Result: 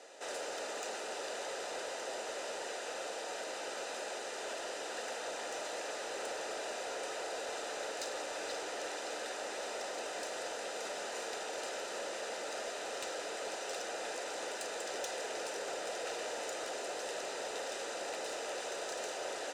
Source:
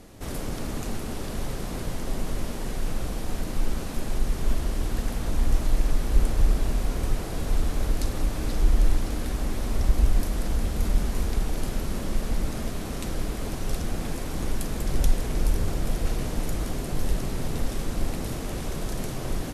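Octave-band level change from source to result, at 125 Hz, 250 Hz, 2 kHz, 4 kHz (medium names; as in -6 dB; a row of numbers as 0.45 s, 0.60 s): under -40 dB, -20.0 dB, -0.5 dB, -1.5 dB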